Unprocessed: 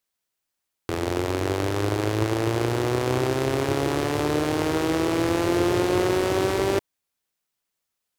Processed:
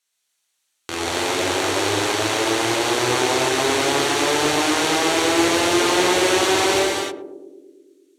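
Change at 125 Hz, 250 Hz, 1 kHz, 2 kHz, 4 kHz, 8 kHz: -6.5, +2.0, +7.5, +10.0, +13.0, +14.0 dB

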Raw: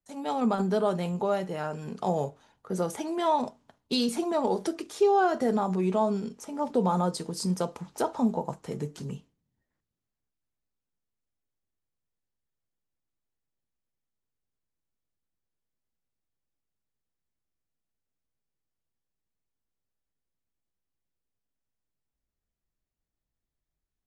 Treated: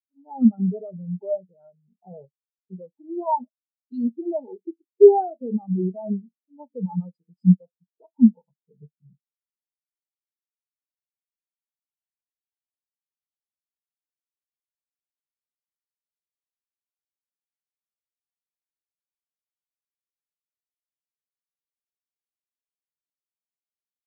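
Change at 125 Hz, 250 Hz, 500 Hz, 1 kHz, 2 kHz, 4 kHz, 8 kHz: +5.5 dB, +6.5 dB, +5.0 dB, -2.0 dB, under -35 dB, under -40 dB, under -35 dB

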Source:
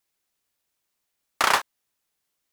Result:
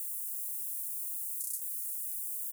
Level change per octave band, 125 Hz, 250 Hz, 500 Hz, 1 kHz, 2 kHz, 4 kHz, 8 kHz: under -40 dB, under -40 dB, under -40 dB, under -40 dB, under -40 dB, -29.5 dB, +0.5 dB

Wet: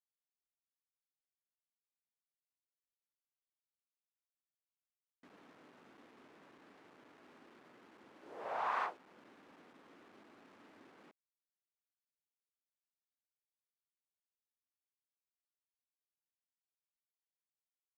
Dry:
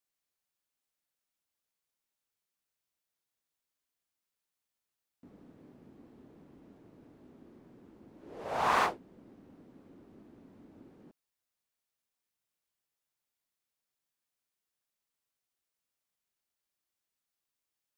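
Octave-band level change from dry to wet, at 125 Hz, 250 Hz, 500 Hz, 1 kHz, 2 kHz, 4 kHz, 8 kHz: under -15 dB, -11.5 dB, -8.5 dB, -8.0 dB, -9.0 dB, -13.5 dB, under -15 dB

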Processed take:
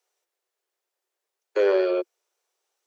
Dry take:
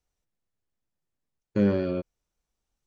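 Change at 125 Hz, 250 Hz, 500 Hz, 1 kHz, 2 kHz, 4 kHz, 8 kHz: under -40 dB, -5.5 dB, +8.0 dB, +8.0 dB, +8.0 dB, +8.0 dB, n/a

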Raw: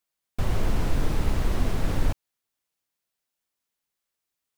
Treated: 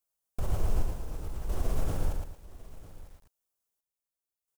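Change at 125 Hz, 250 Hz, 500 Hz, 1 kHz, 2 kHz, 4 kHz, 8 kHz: -6.5, -10.5, -6.5, -8.0, -13.0, -11.5, -5.5 dB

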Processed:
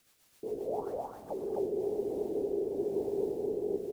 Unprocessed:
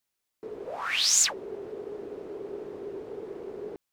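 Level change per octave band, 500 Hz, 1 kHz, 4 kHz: +5.5 dB, -3.0 dB, under -30 dB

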